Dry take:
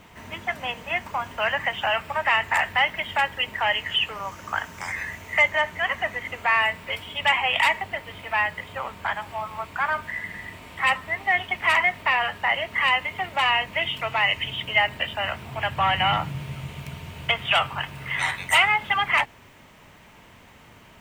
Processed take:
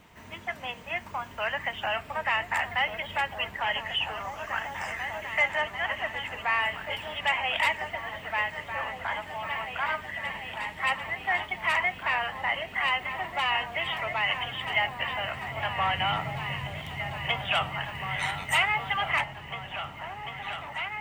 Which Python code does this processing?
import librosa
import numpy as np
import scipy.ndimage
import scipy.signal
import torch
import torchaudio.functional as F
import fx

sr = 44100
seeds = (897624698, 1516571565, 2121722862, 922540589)

y = fx.quant_dither(x, sr, seeds[0], bits=12, dither='none', at=(18.1, 18.64))
y = fx.echo_opening(y, sr, ms=744, hz=200, octaves=2, feedback_pct=70, wet_db=-3)
y = fx.wow_flutter(y, sr, seeds[1], rate_hz=2.1, depth_cents=17.0)
y = y * librosa.db_to_amplitude(-6.0)